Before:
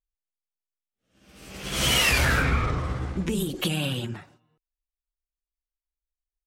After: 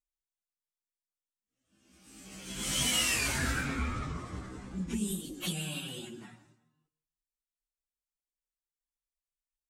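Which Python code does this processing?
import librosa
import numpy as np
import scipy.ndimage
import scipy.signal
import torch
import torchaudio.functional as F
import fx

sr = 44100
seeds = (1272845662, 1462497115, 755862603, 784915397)

y = fx.graphic_eq(x, sr, hz=(125, 250, 500, 8000), db=(-3, 7, -4, 10))
y = fx.echo_feedback(y, sr, ms=111, feedback_pct=25, wet_db=-17.0)
y = fx.stretch_vocoder_free(y, sr, factor=1.5)
y = F.gain(torch.from_numpy(y), -8.0).numpy()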